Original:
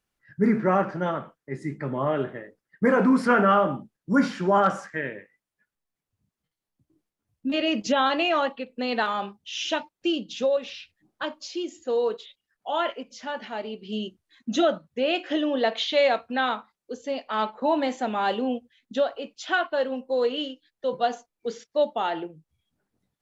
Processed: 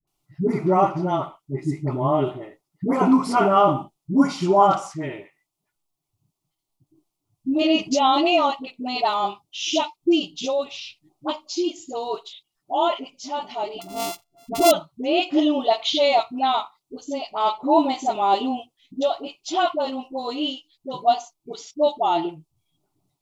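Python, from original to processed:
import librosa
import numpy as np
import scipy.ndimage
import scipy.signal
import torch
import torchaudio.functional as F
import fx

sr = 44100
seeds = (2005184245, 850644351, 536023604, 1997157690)

y = fx.sample_sort(x, sr, block=64, at=(13.74, 14.64))
y = fx.fixed_phaser(y, sr, hz=330.0, stages=8)
y = fx.dispersion(y, sr, late='highs', ms=74.0, hz=570.0)
y = F.gain(torch.from_numpy(y), 7.5).numpy()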